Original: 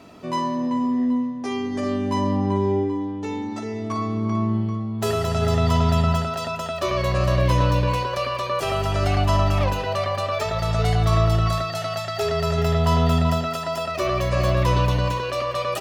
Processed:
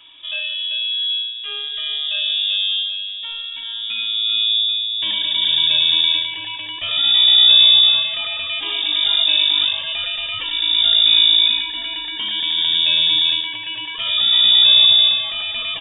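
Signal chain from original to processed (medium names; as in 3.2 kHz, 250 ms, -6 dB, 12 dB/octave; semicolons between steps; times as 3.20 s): peaking EQ 130 Hz +13.5 dB 0.6 oct; frequency inversion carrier 3.6 kHz; trim -2 dB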